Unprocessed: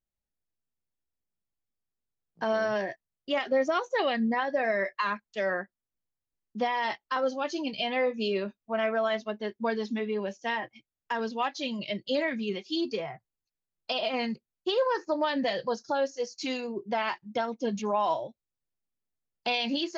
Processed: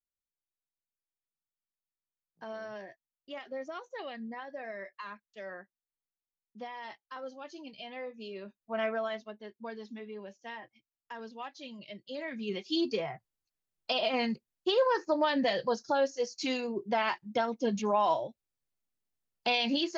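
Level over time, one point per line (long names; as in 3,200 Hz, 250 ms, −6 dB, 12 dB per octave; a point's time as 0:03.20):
0:08.34 −14 dB
0:08.82 −3 dB
0:09.41 −12.5 dB
0:12.14 −12.5 dB
0:12.63 0 dB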